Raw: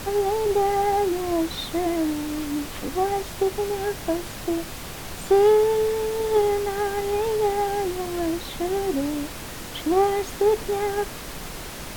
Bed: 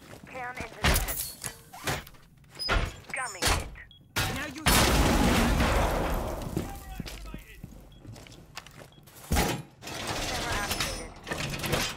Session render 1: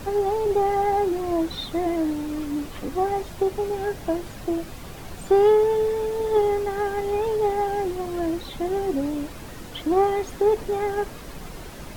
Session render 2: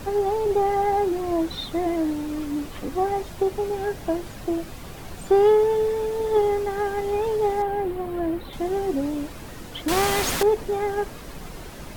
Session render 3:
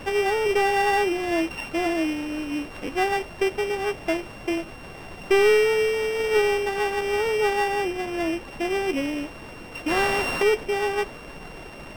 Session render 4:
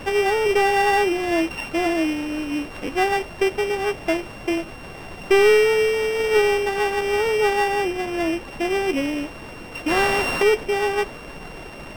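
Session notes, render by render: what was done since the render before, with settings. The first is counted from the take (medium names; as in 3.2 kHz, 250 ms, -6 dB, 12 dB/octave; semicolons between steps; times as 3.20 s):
noise reduction 8 dB, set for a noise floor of -36 dBFS
7.62–8.53 s: peaking EQ 6.1 kHz -14 dB 1.3 oct; 9.88–10.43 s: spectrum-flattening compressor 2:1
sorted samples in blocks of 16 samples; overdrive pedal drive 10 dB, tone 1.6 kHz, clips at -8.5 dBFS
trim +3 dB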